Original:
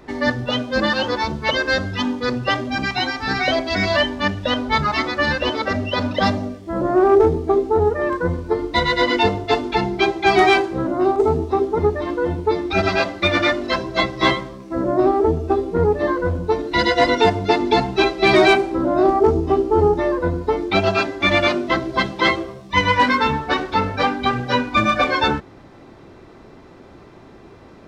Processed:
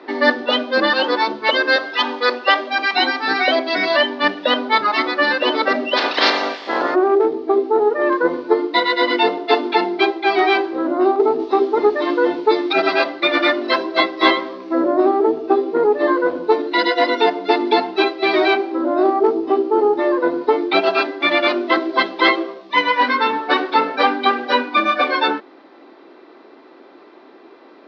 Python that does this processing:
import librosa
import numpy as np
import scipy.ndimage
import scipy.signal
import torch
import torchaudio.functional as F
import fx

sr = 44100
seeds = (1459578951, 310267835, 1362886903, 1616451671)

y = fx.highpass(x, sr, hz=490.0, slope=12, at=(1.76, 2.93))
y = fx.spec_clip(y, sr, under_db=28, at=(5.96, 6.94), fade=0.02)
y = fx.high_shelf(y, sr, hz=2600.0, db=8.5, at=(11.39, 12.73))
y = scipy.signal.sosfilt(scipy.signal.ellip(3, 1.0, 40, [290.0, 4500.0], 'bandpass', fs=sr, output='sos'), y)
y = fx.rider(y, sr, range_db=10, speed_s=0.5)
y = y * 10.0 ** (2.5 / 20.0)